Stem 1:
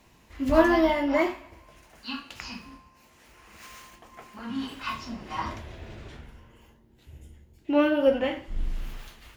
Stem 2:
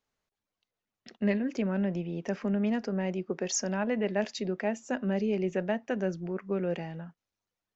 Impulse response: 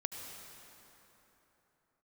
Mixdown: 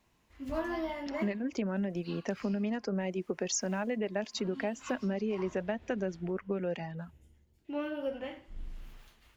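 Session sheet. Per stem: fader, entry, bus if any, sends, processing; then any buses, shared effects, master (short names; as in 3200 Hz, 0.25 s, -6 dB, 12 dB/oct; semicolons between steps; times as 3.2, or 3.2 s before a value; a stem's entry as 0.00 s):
-13.0 dB, 0.00 s, no send, dry
+2.0 dB, 0.00 s, no send, reverb removal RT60 0.62 s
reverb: off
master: compressor 6:1, threshold -29 dBFS, peak gain reduction 9 dB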